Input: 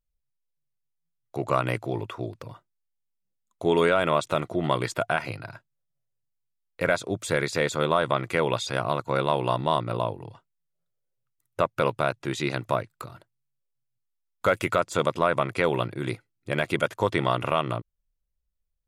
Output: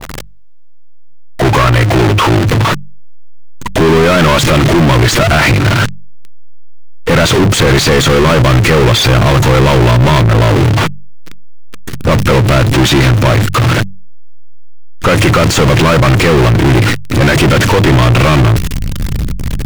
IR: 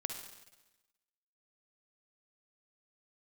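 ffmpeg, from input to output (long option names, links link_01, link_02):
-filter_complex "[0:a]aeval=exprs='val(0)+0.5*0.0631*sgn(val(0))':channel_layout=same,bandreject=frequency=50:width_type=h:width=6,bandreject=frequency=100:width_type=h:width=6,bandreject=frequency=150:width_type=h:width=6,bandreject=frequency=200:width_type=h:width=6,agate=range=-33dB:threshold=-27dB:ratio=3:detection=peak,asubboost=boost=10.5:cutoff=240,asplit=2[link_01][link_02];[link_02]acompressor=threshold=-23dB:ratio=6,volume=0dB[link_03];[link_01][link_03]amix=inputs=2:normalize=0,asetrate=42336,aresample=44100,asplit=2[link_04][link_05];[link_05]highpass=frequency=720:poles=1,volume=34dB,asoftclip=type=tanh:threshold=0dB[link_06];[link_04][link_06]amix=inputs=2:normalize=0,lowpass=frequency=1500:poles=1,volume=-6dB,adynamicequalizer=threshold=0.0501:dfrequency=1600:dqfactor=0.7:tfrequency=1600:tqfactor=0.7:attack=5:release=100:ratio=0.375:range=3:mode=boostabove:tftype=highshelf,volume=-1.5dB"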